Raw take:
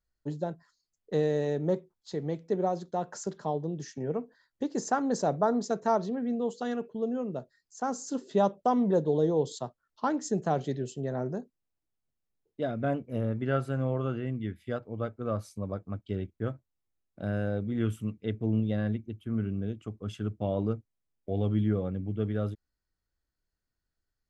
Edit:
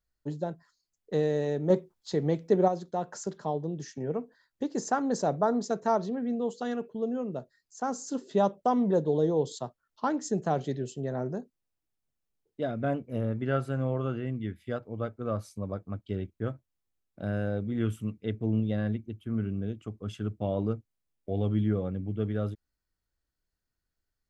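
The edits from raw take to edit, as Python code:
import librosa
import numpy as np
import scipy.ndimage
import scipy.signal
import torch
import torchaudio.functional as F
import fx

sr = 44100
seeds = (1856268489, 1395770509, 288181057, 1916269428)

y = fx.edit(x, sr, fx.clip_gain(start_s=1.7, length_s=0.98, db=5.5), tone=tone)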